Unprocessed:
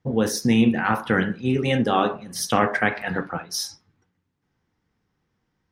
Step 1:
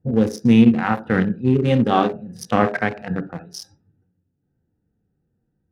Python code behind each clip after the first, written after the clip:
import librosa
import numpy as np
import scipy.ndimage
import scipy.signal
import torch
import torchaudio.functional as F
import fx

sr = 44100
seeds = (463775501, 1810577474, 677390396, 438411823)

y = fx.wiener(x, sr, points=41)
y = fx.hpss(y, sr, part='harmonic', gain_db=9)
y = y * librosa.db_to_amplitude(-2.5)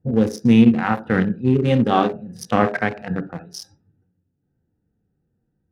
y = x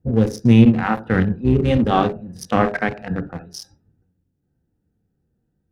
y = fx.octave_divider(x, sr, octaves=1, level_db=-6.0)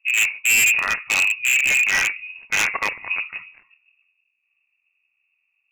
y = fx.cheby_harmonics(x, sr, harmonics=(4, 7, 8), levels_db=(-17, -33, -27), full_scale_db=-1.5)
y = fx.freq_invert(y, sr, carrier_hz=2700)
y = 10.0 ** (-11.0 / 20.0) * (np.abs((y / 10.0 ** (-11.0 / 20.0) + 3.0) % 4.0 - 2.0) - 1.0)